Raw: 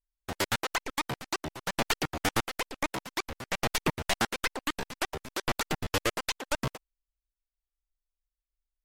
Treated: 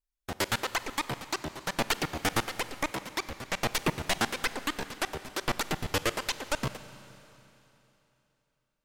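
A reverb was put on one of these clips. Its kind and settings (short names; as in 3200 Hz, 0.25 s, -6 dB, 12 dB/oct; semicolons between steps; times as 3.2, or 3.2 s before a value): Schroeder reverb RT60 3.2 s, combs from 31 ms, DRR 13 dB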